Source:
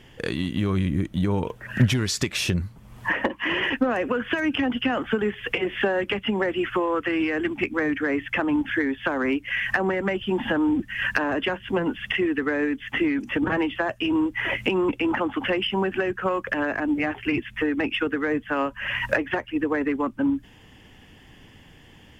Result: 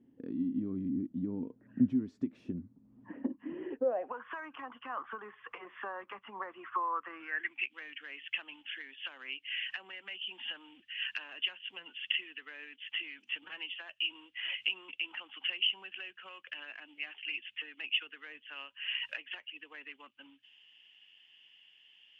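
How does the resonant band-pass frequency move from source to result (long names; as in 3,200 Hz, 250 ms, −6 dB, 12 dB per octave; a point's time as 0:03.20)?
resonant band-pass, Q 7.6
0:03.53 260 Hz
0:04.24 1,100 Hz
0:07.11 1,100 Hz
0:07.66 2,900 Hz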